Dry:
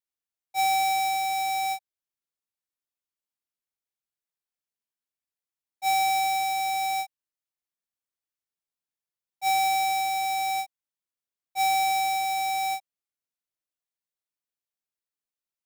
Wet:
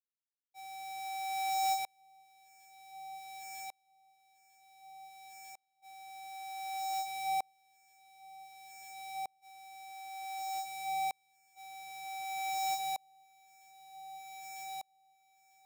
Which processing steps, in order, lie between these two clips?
downward compressor 2 to 1, threshold −27 dBFS, peak gain reduction 2.5 dB
delay that swaps between a low-pass and a high-pass 474 ms, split 1,200 Hz, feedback 83%, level −7.5 dB
tremolo with a ramp in dB swelling 0.54 Hz, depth 36 dB
level +1 dB

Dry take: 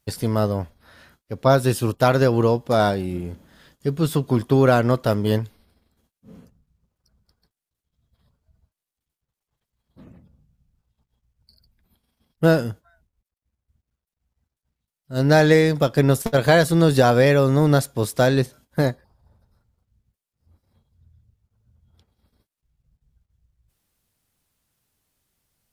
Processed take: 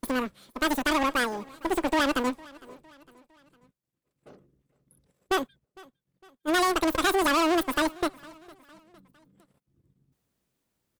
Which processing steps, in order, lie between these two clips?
tube saturation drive 20 dB, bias 0.65
on a send: repeating echo 1,069 ms, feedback 48%, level −23.5 dB
on the sum: wrong playback speed 33 rpm record played at 78 rpm

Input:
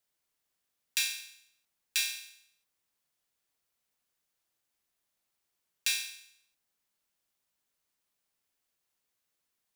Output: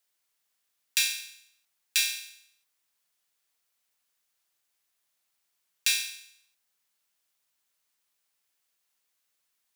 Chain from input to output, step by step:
tilt shelving filter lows −5 dB, about 630 Hz

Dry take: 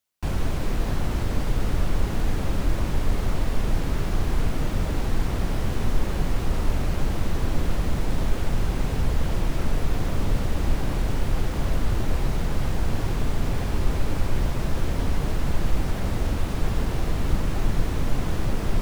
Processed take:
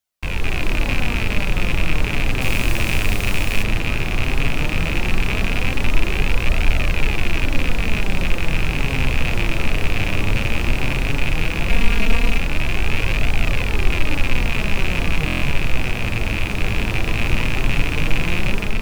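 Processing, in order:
loose part that buzzes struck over −31 dBFS, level −14 dBFS
0:02.41–0:03.63: high-shelf EQ 5,300 Hz +10 dB
0:11.69–0:12.38: comb filter 4.3 ms, depth 84%
automatic gain control gain up to 6 dB
flanger 0.15 Hz, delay 1.2 ms, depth 9 ms, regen +63%
buffer that repeats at 0:15.26, samples 1,024, times 6
level +3.5 dB

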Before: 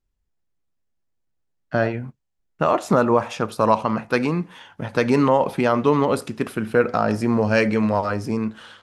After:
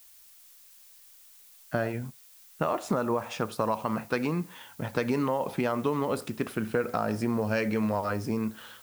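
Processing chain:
downward compressor, threshold −19 dBFS, peak gain reduction 8 dB
background noise blue −50 dBFS
level −4.5 dB

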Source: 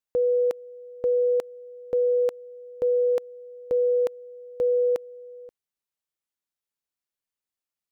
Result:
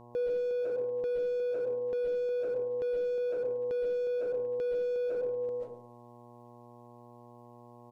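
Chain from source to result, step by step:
comb and all-pass reverb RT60 0.42 s, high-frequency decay 0.35×, pre-delay 100 ms, DRR −5 dB
treble cut that deepens with the level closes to 420 Hz, closed at −18 dBFS
hum with harmonics 120 Hz, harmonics 9, −57 dBFS −2 dB per octave
in parallel at −4 dB: hard clipping −32.5 dBFS, distortion −5 dB
on the sum: brickwall limiter −27 dBFS, peak gain reduction 12.5 dB
on a send: single-tap delay 113 ms −17 dB

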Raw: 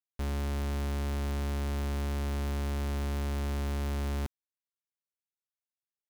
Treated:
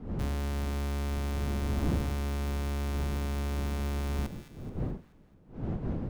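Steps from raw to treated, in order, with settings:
wind on the microphone 210 Hz −38 dBFS
delay with a high-pass on its return 215 ms, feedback 49%, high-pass 1,500 Hz, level −11 dB

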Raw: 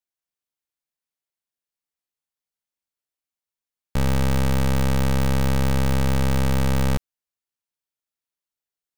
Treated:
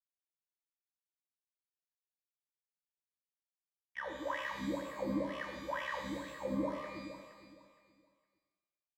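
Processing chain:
pitch-shifted copies added −3 semitones −15 dB
LFO wah 2.1 Hz 240–2,500 Hz, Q 16
all-pass phaser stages 2, 0.65 Hz, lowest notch 190–2,500 Hz
downward expander −48 dBFS
EQ curve with evenly spaced ripples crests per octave 1.2, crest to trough 17 dB
on a send: repeating echo 465 ms, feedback 25%, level −13 dB
on the sum: reverb with rising layers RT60 1 s, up +12 semitones, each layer −8 dB, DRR 2.5 dB
level +2.5 dB

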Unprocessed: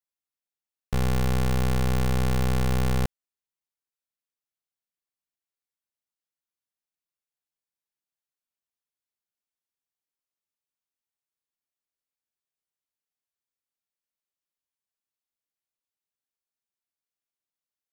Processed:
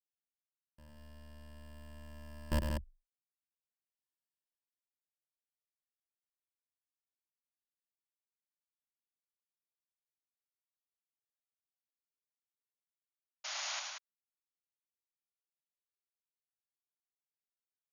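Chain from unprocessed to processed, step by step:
source passing by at 0:04.10, 53 m/s, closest 13 metres
noise gate with hold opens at −38 dBFS
EQ curve with evenly spaced ripples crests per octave 1.3, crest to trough 12 dB
sound drawn into the spectrogram noise, 0:13.44–0:13.80, 570–7,000 Hz −51 dBFS
loudspeakers that aren't time-aligned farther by 35 metres −6 dB, 63 metres −5 dB
level +10 dB

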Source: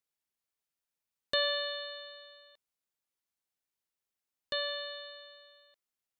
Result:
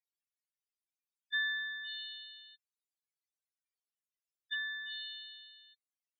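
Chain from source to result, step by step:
treble cut that deepens with the level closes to 2,400 Hz, closed at −34.5 dBFS
spectral peaks only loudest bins 8
Butterworth high-pass 1,700 Hz 36 dB per octave
level +7 dB

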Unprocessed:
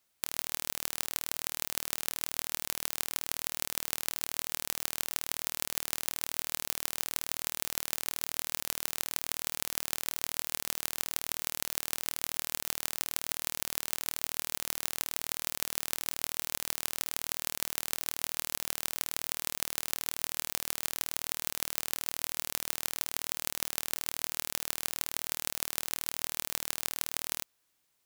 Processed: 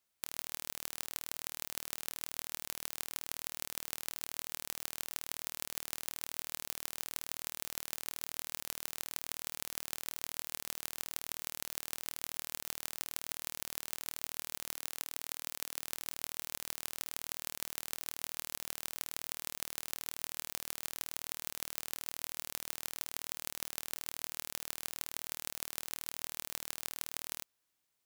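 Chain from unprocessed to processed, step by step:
0:14.75–0:15.82: low-shelf EQ 220 Hz −7 dB
level −6.5 dB

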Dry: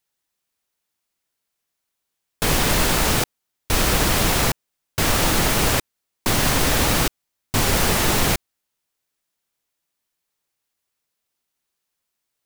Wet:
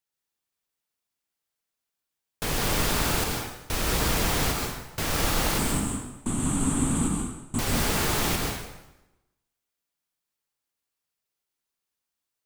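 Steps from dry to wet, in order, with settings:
0:05.58–0:07.59: drawn EQ curve 110 Hz 0 dB, 250 Hz +9 dB, 520 Hz −11 dB, 1,200 Hz −3 dB, 1,800 Hz −14 dB, 3,300 Hz −10 dB, 5,300 Hz −23 dB, 8,100 Hz +9 dB, 15,000 Hz −28 dB
dense smooth reverb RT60 0.98 s, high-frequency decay 0.85×, pre-delay 110 ms, DRR 0.5 dB
level −9 dB

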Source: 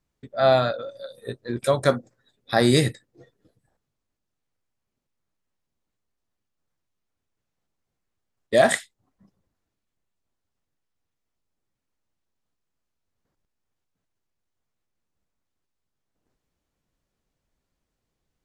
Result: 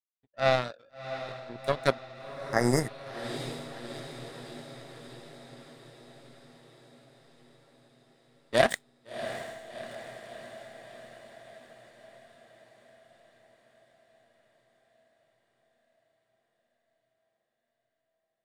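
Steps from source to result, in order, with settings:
power curve on the samples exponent 2
feedback delay with all-pass diffusion 693 ms, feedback 64%, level −11 dB
healed spectral selection 0:02.28–0:03.02, 2,200–4,800 Hz

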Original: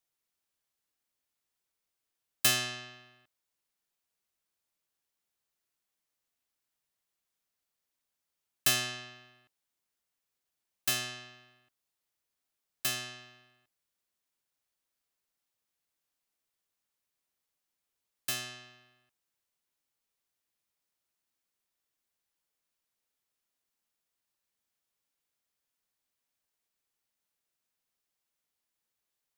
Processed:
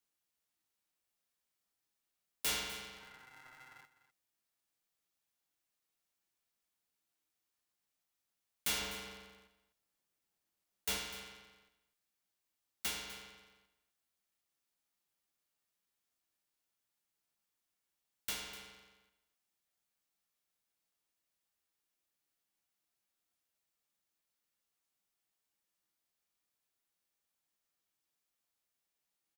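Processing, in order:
0:02.95–0:03.83: healed spectral selection 1,000–2,000 Hz before
0:08.81–0:10.98: low-shelf EQ 490 Hz +6.5 dB
in parallel at 0 dB: downward compressor, threshold −44 dBFS, peak gain reduction 21 dB
on the sum: tuned comb filter 510 Hz, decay 0.58 s, mix 80%
wave folding −32.5 dBFS
on a send: single-tap delay 250 ms −15 dB
on the sum: ring modulator with a square carrier 320 Hz
level +5 dB

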